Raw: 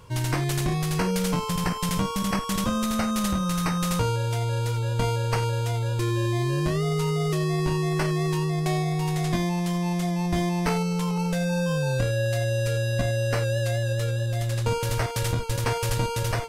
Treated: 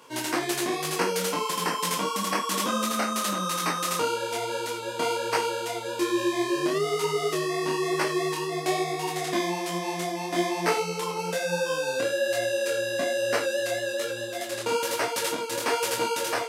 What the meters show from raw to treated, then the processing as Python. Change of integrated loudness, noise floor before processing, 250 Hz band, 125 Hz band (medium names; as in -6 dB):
-1.5 dB, -30 dBFS, -4.5 dB, -18.0 dB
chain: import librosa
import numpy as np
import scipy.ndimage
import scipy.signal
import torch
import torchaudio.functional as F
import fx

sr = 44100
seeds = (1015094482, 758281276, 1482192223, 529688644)

y = scipy.signal.sosfilt(scipy.signal.cheby1(3, 1.0, 280.0, 'highpass', fs=sr, output='sos'), x)
y = fx.detune_double(y, sr, cents=39)
y = y * 10.0 ** (6.5 / 20.0)